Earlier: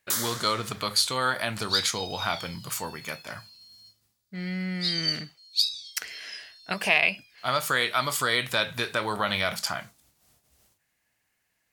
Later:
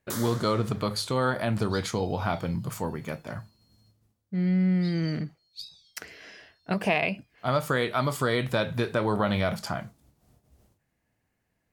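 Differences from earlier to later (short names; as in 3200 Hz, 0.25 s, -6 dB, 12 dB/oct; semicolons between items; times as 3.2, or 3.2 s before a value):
second sound -9.0 dB; master: add tilt shelf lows +9.5 dB, about 920 Hz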